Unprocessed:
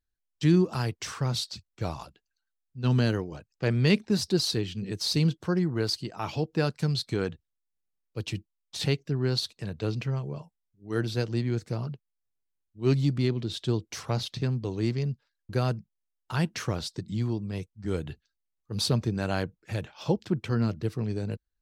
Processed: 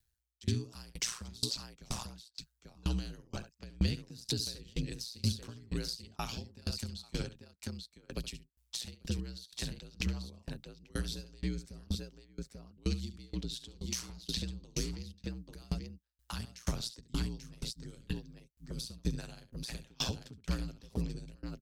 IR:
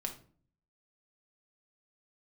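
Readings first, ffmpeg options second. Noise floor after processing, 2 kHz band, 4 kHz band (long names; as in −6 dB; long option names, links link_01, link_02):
−77 dBFS, −11.0 dB, −6.0 dB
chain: -filter_complex "[0:a]highshelf=frequency=3200:gain=10,acrossover=split=630[link_01][link_02];[link_02]alimiter=limit=-17.5dB:level=0:latency=1:release=41[link_03];[link_01][link_03]amix=inputs=2:normalize=0,acompressor=threshold=-33dB:ratio=2.5,aecho=1:1:69|839:0.299|0.355,aeval=exprs='val(0)*sin(2*PI*59*n/s)':channel_layout=same,acrossover=split=170|3000[link_04][link_05][link_06];[link_05]acompressor=threshold=-46dB:ratio=6[link_07];[link_04][link_07][link_06]amix=inputs=3:normalize=0,aeval=exprs='val(0)*pow(10,-28*if(lt(mod(2.1*n/s,1),2*abs(2.1)/1000),1-mod(2.1*n/s,1)/(2*abs(2.1)/1000),(mod(2.1*n/s,1)-2*abs(2.1)/1000)/(1-2*abs(2.1)/1000))/20)':channel_layout=same,volume=9.5dB"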